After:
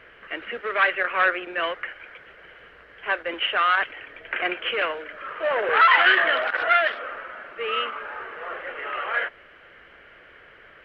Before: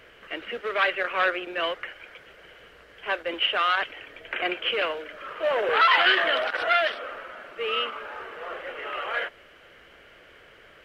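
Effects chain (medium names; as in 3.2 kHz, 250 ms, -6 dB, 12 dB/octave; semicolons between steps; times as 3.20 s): FFT filter 610 Hz 0 dB, 1.8 kHz +5 dB, 6.9 kHz -13 dB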